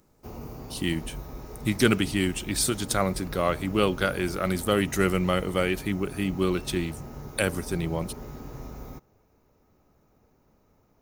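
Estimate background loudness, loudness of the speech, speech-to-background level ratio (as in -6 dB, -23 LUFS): -41.0 LUFS, -27.0 LUFS, 14.0 dB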